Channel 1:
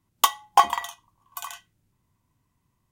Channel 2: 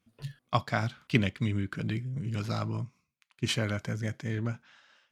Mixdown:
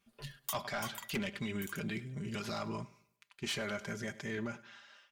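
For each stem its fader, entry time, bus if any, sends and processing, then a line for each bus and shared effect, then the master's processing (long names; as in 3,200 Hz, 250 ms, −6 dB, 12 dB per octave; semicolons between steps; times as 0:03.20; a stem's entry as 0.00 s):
−1.5 dB, 0.25 s, no send, no echo send, first difference; reverb reduction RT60 0.54 s; automatic ducking −8 dB, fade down 1.95 s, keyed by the second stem
+1.5 dB, 0.00 s, no send, echo send −22.5 dB, parametric band 150 Hz −9.5 dB 1.7 octaves; comb filter 5 ms, depth 64%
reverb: not used
echo: repeating echo 101 ms, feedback 37%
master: soft clipping −22 dBFS, distortion −10 dB; brickwall limiter −29.5 dBFS, peak gain reduction 7.5 dB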